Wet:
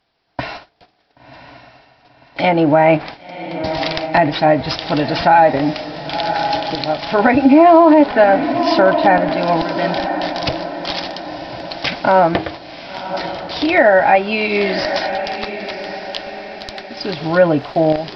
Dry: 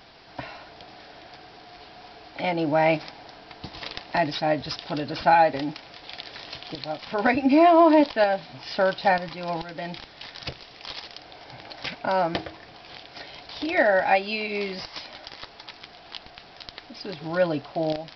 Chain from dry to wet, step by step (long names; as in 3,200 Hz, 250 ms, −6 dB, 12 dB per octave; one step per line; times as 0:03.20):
treble cut that deepens with the level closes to 2,100 Hz, closed at −21 dBFS
noise gate −41 dBFS, range −29 dB
on a send: feedback delay with all-pass diffusion 1,054 ms, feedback 45%, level −11 dB
on the sum: boost into a limiter +13 dB
level −1 dB